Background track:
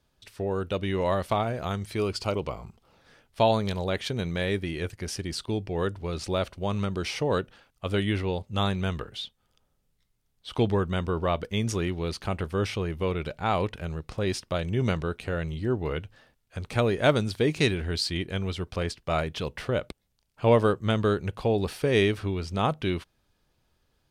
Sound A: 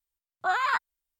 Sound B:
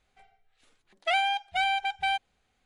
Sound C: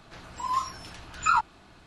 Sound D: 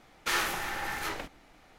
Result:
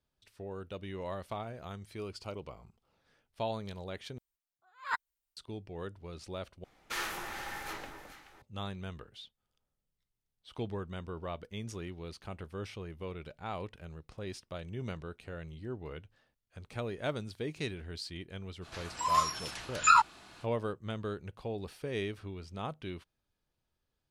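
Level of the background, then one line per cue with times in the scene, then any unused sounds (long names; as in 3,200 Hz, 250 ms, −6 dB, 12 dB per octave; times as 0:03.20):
background track −13.5 dB
0:04.18: overwrite with A −2.5 dB + level that may rise only so fast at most 190 dB per second
0:06.64: overwrite with D −7.5 dB + delay that swaps between a low-pass and a high-pass 214 ms, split 1,200 Hz, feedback 53%, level −5.5 dB
0:18.61: mix in C, fades 0.05 s + spectral tilt +2 dB per octave
not used: B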